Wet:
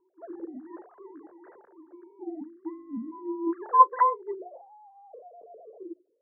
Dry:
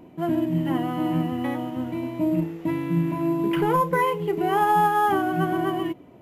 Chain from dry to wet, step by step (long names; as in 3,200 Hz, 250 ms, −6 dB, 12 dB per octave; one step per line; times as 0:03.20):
three sine waves on the formant tracks
Chebyshev low-pass filter 1,700 Hz, order 5, from 0:04.34 680 Hz
mains-hum notches 60/120/180/240/300/360/420/480/540 Hz
expander for the loud parts 1.5 to 1, over −34 dBFS
level −2.5 dB